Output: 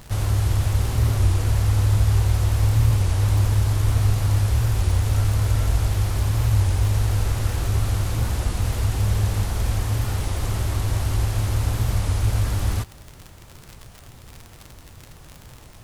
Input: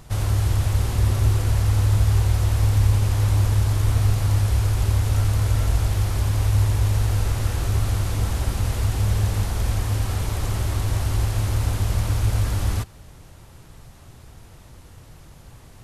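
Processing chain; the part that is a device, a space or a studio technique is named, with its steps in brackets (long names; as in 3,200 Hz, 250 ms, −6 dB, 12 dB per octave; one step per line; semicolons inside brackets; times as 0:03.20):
warped LP (wow of a warped record 33 1/3 rpm, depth 160 cents; surface crackle 67 per second −28 dBFS; pink noise bed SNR 34 dB)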